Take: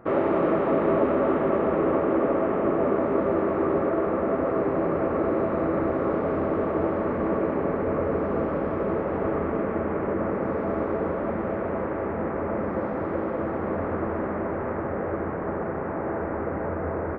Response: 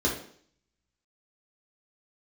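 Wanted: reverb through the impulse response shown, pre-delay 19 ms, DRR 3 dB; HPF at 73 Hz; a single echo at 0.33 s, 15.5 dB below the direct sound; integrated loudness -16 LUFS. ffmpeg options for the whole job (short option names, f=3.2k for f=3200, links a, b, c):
-filter_complex "[0:a]highpass=73,aecho=1:1:330:0.168,asplit=2[a][b];[1:a]atrim=start_sample=2205,adelay=19[c];[b][c]afir=irnorm=-1:irlink=0,volume=-14dB[d];[a][d]amix=inputs=2:normalize=0,volume=5.5dB"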